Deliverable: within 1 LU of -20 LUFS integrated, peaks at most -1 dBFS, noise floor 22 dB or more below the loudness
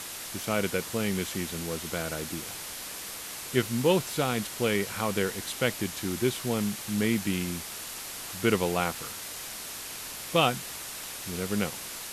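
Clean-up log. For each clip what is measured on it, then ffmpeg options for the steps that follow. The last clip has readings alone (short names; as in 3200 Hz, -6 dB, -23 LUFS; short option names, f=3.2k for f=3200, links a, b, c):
noise floor -40 dBFS; noise floor target -52 dBFS; loudness -30.0 LUFS; peak -8.5 dBFS; loudness target -20.0 LUFS
-> -af "afftdn=nr=12:nf=-40"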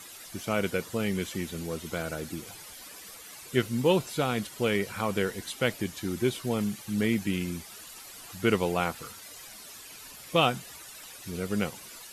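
noise floor -47 dBFS; noise floor target -52 dBFS
-> -af "afftdn=nr=6:nf=-47"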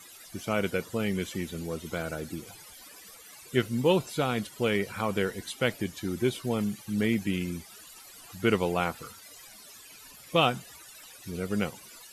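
noise floor -50 dBFS; noise floor target -52 dBFS
-> -af "afftdn=nr=6:nf=-50"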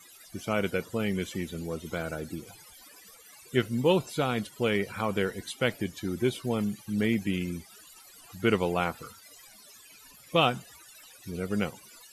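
noise floor -53 dBFS; loudness -30.0 LUFS; peak -9.0 dBFS; loudness target -20.0 LUFS
-> -af "volume=10dB,alimiter=limit=-1dB:level=0:latency=1"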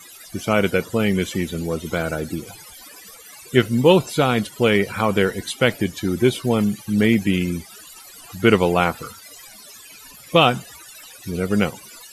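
loudness -20.0 LUFS; peak -1.0 dBFS; noise floor -43 dBFS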